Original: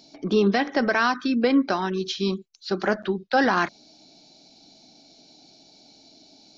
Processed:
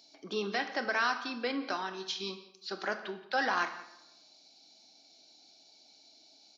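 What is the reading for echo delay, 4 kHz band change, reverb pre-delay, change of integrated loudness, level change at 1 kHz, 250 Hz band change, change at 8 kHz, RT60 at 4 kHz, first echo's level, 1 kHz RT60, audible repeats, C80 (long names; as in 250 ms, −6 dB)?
174 ms, −6.0 dB, 21 ms, −10.5 dB, −8.5 dB, −17.5 dB, can't be measured, 0.60 s, −19.5 dB, 0.85 s, 1, 12.5 dB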